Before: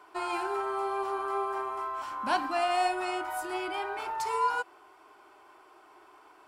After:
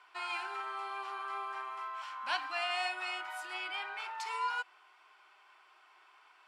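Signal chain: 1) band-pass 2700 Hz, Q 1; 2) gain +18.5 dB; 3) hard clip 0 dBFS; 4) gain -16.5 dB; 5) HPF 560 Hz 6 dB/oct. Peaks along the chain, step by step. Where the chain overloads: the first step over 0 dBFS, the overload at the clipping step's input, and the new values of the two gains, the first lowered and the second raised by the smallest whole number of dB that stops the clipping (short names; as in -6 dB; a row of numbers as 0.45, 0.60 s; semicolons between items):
-20.5, -2.0, -2.0, -18.5, -19.5 dBFS; no overload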